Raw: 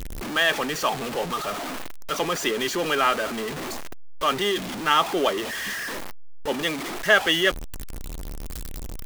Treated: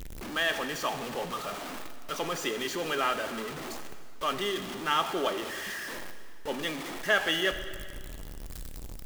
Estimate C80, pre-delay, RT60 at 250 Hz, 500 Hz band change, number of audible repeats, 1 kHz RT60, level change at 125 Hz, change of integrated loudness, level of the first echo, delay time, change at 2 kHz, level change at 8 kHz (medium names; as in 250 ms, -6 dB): 10.5 dB, 19 ms, 2.0 s, -7.0 dB, no echo, 2.1 s, -7.0 dB, -7.0 dB, no echo, no echo, -7.0 dB, -7.0 dB